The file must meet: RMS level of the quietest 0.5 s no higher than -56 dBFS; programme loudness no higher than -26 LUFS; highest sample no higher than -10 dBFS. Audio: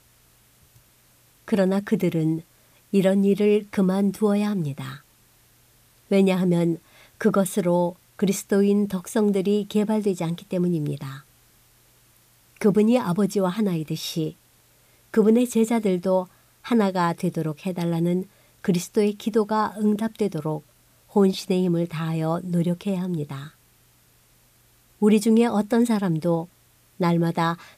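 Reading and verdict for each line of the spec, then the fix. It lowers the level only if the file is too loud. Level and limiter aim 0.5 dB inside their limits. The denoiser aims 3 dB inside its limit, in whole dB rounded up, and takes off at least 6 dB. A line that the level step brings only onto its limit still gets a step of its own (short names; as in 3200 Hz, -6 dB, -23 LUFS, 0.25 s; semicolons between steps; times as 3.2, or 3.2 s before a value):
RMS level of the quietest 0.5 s -59 dBFS: OK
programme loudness -23.0 LUFS: fail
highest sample -7.5 dBFS: fail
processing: gain -3.5 dB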